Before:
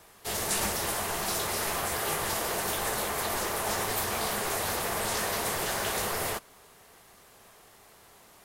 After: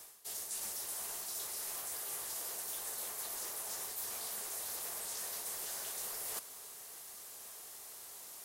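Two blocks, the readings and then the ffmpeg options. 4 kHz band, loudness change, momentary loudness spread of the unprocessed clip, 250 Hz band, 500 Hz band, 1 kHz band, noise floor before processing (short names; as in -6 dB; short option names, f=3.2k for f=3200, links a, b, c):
-12.0 dB, -10.5 dB, 1 LU, -23.0 dB, -20.0 dB, -19.0 dB, -56 dBFS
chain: -af "bass=f=250:g=-8,treble=f=4k:g=14,areverse,acompressor=threshold=-37dB:ratio=6,areverse,volume=-3.5dB"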